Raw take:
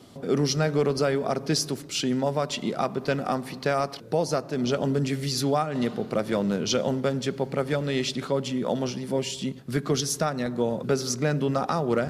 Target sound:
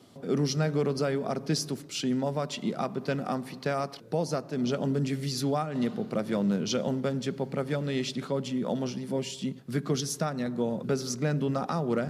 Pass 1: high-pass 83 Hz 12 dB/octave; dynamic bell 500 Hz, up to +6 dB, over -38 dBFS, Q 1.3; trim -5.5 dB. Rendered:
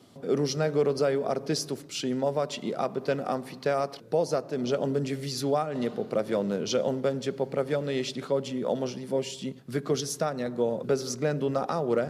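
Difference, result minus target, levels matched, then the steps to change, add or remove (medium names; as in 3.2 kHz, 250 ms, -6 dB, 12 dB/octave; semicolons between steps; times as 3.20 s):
250 Hz band -3.5 dB
change: dynamic bell 190 Hz, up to +6 dB, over -38 dBFS, Q 1.3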